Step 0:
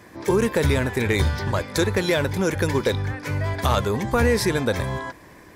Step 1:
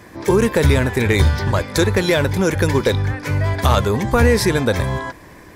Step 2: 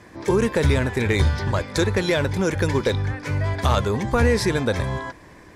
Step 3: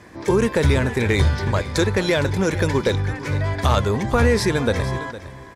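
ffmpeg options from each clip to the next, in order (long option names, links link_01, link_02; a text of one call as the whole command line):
ffmpeg -i in.wav -af "lowshelf=frequency=79:gain=5.5,volume=4.5dB" out.wav
ffmpeg -i in.wav -af "lowpass=9300,volume=-4.5dB" out.wav
ffmpeg -i in.wav -af "aecho=1:1:460:0.178,volume=1.5dB" out.wav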